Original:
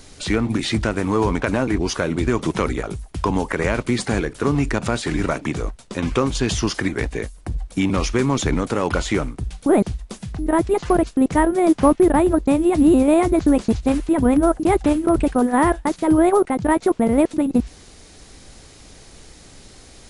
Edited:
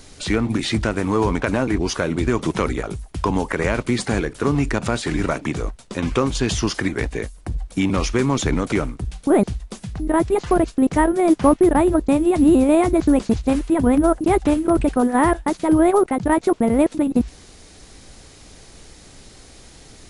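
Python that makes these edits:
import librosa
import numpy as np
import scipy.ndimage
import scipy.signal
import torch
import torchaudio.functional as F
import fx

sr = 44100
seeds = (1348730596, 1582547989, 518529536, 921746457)

y = fx.edit(x, sr, fx.cut(start_s=8.72, length_s=0.39), tone=tone)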